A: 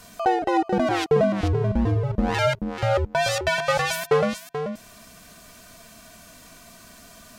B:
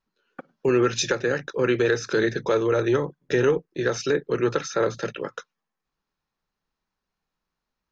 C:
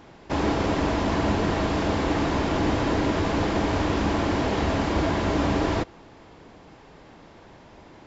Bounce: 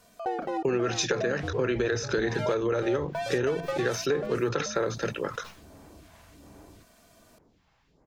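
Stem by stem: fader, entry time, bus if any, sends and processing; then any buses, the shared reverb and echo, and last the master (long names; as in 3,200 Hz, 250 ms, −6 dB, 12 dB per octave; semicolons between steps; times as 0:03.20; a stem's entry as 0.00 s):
−13.5 dB, 0.00 s, no send, parametric band 510 Hz +7 dB 1.1 octaves
−0.5 dB, 0.00 s, no send, level that may fall only so fast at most 140 dB per second
−15.0 dB, 1.00 s, no send, downward compressor, threshold −31 dBFS, peak gain reduction 11.5 dB; brickwall limiter −27.5 dBFS, peak gain reduction 6.5 dB; all-pass phaser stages 2, 1.3 Hz, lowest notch 290–4,400 Hz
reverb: not used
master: downward compressor, threshold −23 dBFS, peak gain reduction 8 dB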